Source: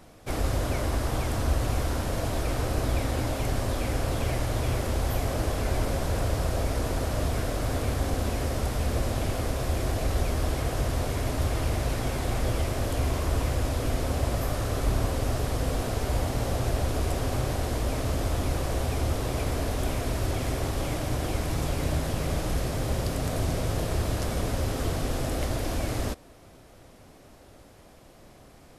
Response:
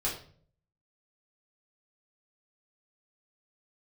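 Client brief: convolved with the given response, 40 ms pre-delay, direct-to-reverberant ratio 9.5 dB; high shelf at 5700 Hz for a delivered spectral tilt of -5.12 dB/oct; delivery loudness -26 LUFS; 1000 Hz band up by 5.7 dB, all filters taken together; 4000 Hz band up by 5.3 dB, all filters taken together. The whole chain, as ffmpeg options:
-filter_complex "[0:a]equalizer=f=1k:t=o:g=7.5,equalizer=f=4k:t=o:g=7.5,highshelf=f=5.7k:g=-3,asplit=2[a][b];[1:a]atrim=start_sample=2205,adelay=40[c];[b][c]afir=irnorm=-1:irlink=0,volume=-15dB[d];[a][d]amix=inputs=2:normalize=0,volume=1dB"

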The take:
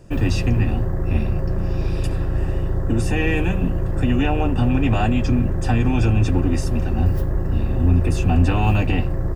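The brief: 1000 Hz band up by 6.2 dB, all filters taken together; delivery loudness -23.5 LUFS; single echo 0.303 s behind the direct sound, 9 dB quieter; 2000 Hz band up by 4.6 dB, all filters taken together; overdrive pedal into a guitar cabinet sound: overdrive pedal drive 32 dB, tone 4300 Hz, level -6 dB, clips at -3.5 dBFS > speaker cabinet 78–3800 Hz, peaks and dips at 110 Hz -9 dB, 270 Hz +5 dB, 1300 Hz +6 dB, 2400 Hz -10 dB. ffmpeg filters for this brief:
-filter_complex "[0:a]equalizer=f=1k:t=o:g=6,equalizer=f=2k:t=o:g=7.5,aecho=1:1:303:0.355,asplit=2[a][b];[b]highpass=f=720:p=1,volume=32dB,asoftclip=type=tanh:threshold=-3.5dB[c];[a][c]amix=inputs=2:normalize=0,lowpass=f=4.3k:p=1,volume=-6dB,highpass=78,equalizer=f=110:t=q:w=4:g=-9,equalizer=f=270:t=q:w=4:g=5,equalizer=f=1.3k:t=q:w=4:g=6,equalizer=f=2.4k:t=q:w=4:g=-10,lowpass=f=3.8k:w=0.5412,lowpass=f=3.8k:w=1.3066,volume=-12.5dB"

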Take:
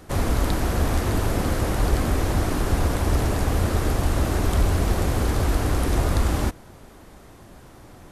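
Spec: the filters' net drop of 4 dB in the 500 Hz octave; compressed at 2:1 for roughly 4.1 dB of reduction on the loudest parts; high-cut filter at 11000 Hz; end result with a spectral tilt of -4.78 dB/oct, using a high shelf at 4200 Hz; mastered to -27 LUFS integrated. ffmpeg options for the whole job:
-af "lowpass=11k,equalizer=f=500:t=o:g=-5.5,highshelf=f=4.2k:g=8,acompressor=threshold=-23dB:ratio=2"

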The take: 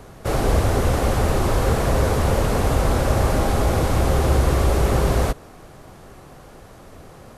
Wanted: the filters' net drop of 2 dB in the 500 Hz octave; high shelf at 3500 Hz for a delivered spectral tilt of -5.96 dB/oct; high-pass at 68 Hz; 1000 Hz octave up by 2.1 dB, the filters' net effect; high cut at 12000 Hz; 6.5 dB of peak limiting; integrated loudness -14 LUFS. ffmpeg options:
-af "highpass=68,lowpass=12k,equalizer=f=500:t=o:g=-3.5,equalizer=f=1k:t=o:g=4.5,highshelf=f=3.5k:g=-5.5,volume=10.5dB,alimiter=limit=-4.5dB:level=0:latency=1"

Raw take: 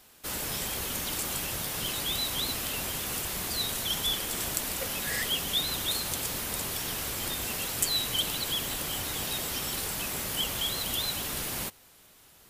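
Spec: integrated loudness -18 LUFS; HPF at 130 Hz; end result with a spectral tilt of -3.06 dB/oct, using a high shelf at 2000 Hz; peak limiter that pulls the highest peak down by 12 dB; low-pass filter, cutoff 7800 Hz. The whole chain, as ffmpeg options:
-af "highpass=130,lowpass=7.8k,highshelf=f=2k:g=-3.5,volume=18dB,alimiter=limit=-9dB:level=0:latency=1"

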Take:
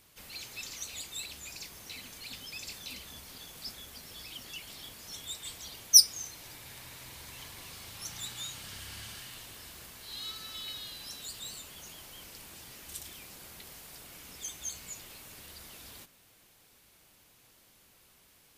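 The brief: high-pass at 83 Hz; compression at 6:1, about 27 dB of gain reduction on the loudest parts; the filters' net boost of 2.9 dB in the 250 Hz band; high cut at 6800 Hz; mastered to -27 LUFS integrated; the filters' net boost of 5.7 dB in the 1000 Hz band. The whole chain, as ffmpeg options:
-af "highpass=83,lowpass=6.8k,equalizer=f=250:t=o:g=3.5,equalizer=f=1k:t=o:g=7,acompressor=threshold=-45dB:ratio=6,volume=20.5dB"

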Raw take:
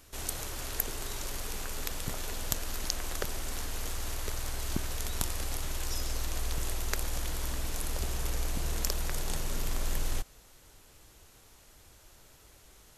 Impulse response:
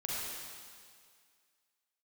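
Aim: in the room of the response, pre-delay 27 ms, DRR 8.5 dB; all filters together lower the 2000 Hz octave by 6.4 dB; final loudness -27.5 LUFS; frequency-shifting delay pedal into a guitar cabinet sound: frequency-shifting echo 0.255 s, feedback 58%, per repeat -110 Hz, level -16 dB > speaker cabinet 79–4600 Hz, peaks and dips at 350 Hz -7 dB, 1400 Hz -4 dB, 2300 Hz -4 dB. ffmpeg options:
-filter_complex "[0:a]equalizer=f=2k:t=o:g=-5,asplit=2[a][b];[1:a]atrim=start_sample=2205,adelay=27[c];[b][c]afir=irnorm=-1:irlink=0,volume=-12.5dB[d];[a][d]amix=inputs=2:normalize=0,asplit=7[e][f][g][h][i][j][k];[f]adelay=255,afreqshift=-110,volume=-16dB[l];[g]adelay=510,afreqshift=-220,volume=-20.7dB[m];[h]adelay=765,afreqshift=-330,volume=-25.5dB[n];[i]adelay=1020,afreqshift=-440,volume=-30.2dB[o];[j]adelay=1275,afreqshift=-550,volume=-34.9dB[p];[k]adelay=1530,afreqshift=-660,volume=-39.7dB[q];[e][l][m][n][o][p][q]amix=inputs=7:normalize=0,highpass=79,equalizer=f=350:t=q:w=4:g=-7,equalizer=f=1.4k:t=q:w=4:g=-4,equalizer=f=2.3k:t=q:w=4:g=-4,lowpass=f=4.6k:w=0.5412,lowpass=f=4.6k:w=1.3066,volume=13.5dB"

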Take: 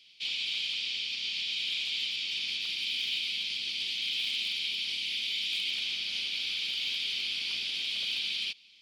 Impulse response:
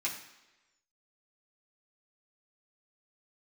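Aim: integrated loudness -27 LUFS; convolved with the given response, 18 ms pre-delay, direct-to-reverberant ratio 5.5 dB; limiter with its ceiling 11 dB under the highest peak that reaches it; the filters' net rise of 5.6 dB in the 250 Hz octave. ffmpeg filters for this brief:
-filter_complex "[0:a]equalizer=f=250:t=o:g=7,alimiter=level_in=9.5dB:limit=-24dB:level=0:latency=1,volume=-9.5dB,asplit=2[a][b];[1:a]atrim=start_sample=2205,adelay=18[c];[b][c]afir=irnorm=-1:irlink=0,volume=-10dB[d];[a][d]amix=inputs=2:normalize=0,volume=11dB"

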